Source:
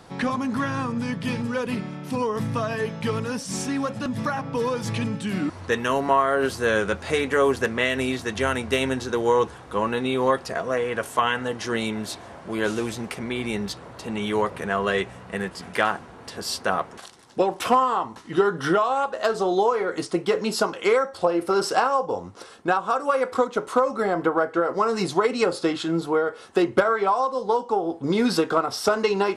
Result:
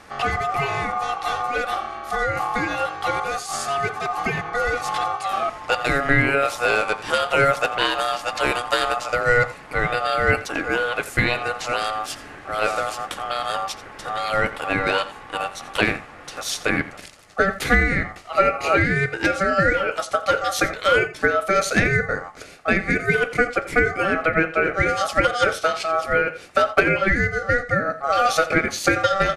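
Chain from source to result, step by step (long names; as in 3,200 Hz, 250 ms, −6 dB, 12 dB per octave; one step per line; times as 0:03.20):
ring modulation 970 Hz
single-tap delay 86 ms −16 dB
level +5 dB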